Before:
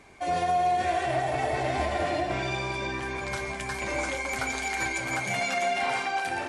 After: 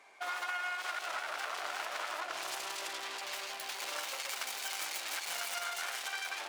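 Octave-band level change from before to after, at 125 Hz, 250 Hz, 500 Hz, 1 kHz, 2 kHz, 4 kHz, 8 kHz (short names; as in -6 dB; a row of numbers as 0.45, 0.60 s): under -35 dB, -25.0 dB, -17.5 dB, -12.5 dB, -8.0 dB, -1.5 dB, -2.0 dB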